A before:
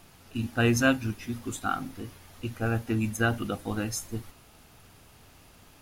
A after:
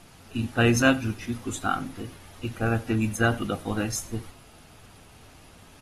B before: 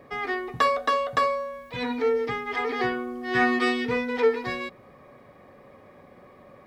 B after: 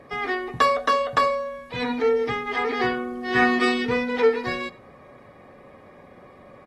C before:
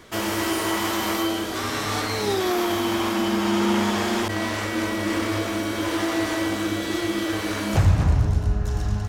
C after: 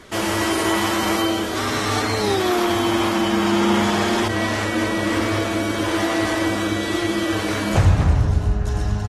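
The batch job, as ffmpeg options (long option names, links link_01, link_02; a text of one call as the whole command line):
ffmpeg -i in.wav -filter_complex "[0:a]asplit=2[link_01][link_02];[link_02]aecho=0:1:91:0.075[link_03];[link_01][link_03]amix=inputs=2:normalize=0,volume=2.5dB" -ar 44100 -c:a aac -b:a 32k out.aac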